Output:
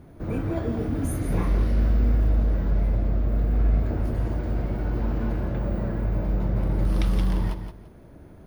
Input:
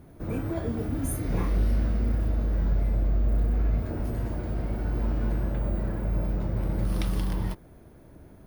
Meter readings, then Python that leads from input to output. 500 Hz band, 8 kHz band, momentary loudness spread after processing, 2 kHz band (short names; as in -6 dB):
+3.0 dB, n/a, 6 LU, +2.5 dB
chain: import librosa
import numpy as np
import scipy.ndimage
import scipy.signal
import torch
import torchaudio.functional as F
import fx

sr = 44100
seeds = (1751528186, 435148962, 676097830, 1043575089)

p1 = fx.high_shelf(x, sr, hz=8700.0, db=-10.5)
p2 = p1 + fx.echo_feedback(p1, sr, ms=171, feedback_pct=22, wet_db=-8.5, dry=0)
y = p2 * librosa.db_to_amplitude(2.5)